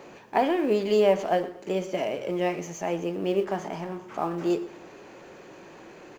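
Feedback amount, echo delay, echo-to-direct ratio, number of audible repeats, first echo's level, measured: 35%, 0.118 s, -17.5 dB, 2, -18.0 dB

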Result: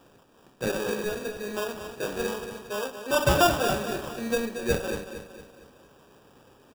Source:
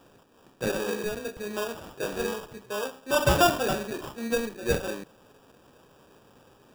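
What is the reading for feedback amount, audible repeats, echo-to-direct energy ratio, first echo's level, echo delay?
45%, 4, -8.5 dB, -9.5 dB, 0.229 s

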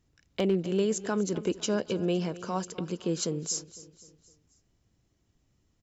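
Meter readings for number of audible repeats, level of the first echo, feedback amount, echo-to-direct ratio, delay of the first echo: 3, -17.0 dB, 48%, -16.0 dB, 0.254 s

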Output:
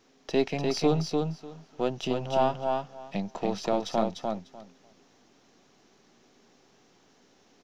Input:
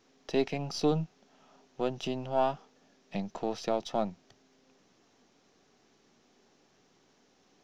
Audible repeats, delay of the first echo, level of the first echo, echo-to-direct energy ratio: 2, 0.298 s, -4.0 dB, -4.0 dB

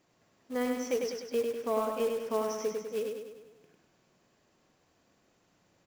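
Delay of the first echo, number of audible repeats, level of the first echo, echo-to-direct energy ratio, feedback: 0.1 s, 6, -4.0 dB, -2.5 dB, 53%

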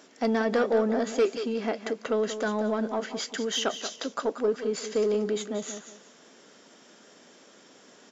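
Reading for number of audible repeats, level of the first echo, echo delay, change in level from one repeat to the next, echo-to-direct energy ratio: 2, -10.5 dB, 0.183 s, -11.5 dB, -10.0 dB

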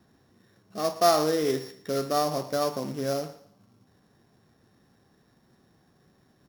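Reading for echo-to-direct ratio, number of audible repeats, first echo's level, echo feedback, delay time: -16.5 dB, 2, -17.0 dB, 33%, 0.113 s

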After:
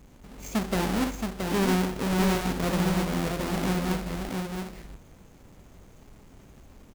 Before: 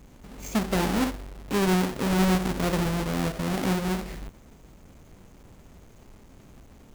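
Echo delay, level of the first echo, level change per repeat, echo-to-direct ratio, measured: 0.168 s, -18.0 dB, no steady repeat, -4.5 dB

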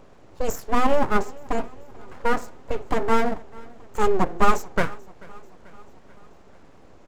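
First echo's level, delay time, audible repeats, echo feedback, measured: -23.5 dB, 0.438 s, 3, 59%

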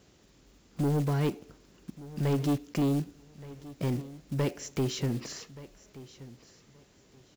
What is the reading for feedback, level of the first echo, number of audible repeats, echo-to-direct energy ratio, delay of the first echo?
22%, -18.0 dB, 2, -18.0 dB, 1.176 s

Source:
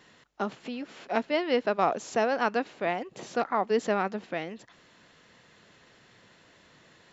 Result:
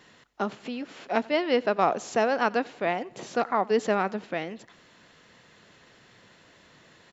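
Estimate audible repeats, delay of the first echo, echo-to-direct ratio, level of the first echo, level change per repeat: 2, 91 ms, -23.0 dB, -24.0 dB, -7.0 dB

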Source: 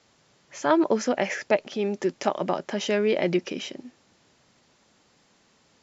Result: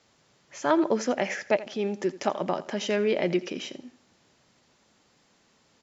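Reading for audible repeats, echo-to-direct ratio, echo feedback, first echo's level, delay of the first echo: 2, -16.5 dB, 27%, -17.0 dB, 83 ms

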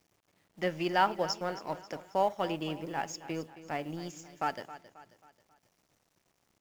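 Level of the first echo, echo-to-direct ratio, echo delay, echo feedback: -15.0 dB, -14.0 dB, 0.269 s, 45%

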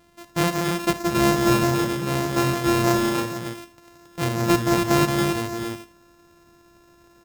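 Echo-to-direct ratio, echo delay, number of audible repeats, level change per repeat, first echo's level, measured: -1.0 dB, 62 ms, 4, no steady repeat, -15.0 dB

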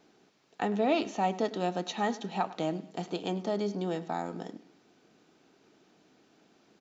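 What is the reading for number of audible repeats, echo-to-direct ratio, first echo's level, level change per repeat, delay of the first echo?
2, -17.5 dB, -18.0 dB, -7.5 dB, 0.102 s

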